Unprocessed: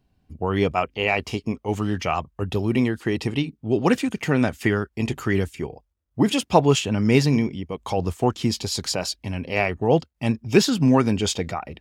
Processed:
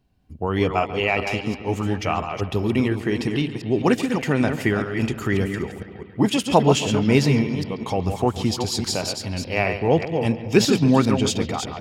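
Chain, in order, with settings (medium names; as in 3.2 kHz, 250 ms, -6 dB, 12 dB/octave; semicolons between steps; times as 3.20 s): chunks repeated in reverse 201 ms, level -6.5 dB; bucket-brigade echo 139 ms, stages 4096, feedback 70%, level -15 dB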